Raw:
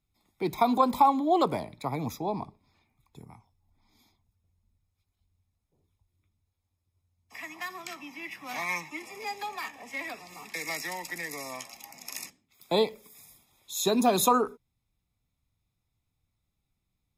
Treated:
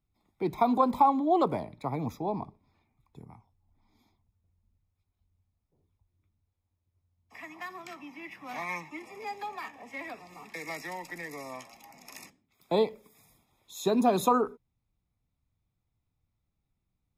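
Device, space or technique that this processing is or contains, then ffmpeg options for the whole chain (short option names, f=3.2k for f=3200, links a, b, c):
through cloth: -af "highshelf=f=2.5k:g=-11.5"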